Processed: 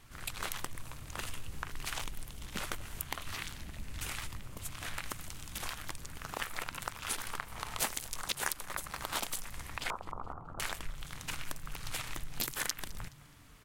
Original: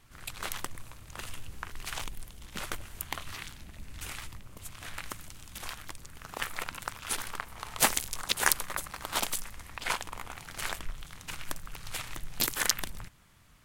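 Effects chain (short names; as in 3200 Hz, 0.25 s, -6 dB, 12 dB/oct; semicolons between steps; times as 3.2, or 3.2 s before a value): 9.9–10.6 elliptic low-pass 1300 Hz, stop band 40 dB; compressor 3:1, threshold -37 dBFS, peak gain reduction 14 dB; on a send: frequency-shifting echo 0.211 s, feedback 36%, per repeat -150 Hz, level -20 dB; on the sum: gain +2.5 dB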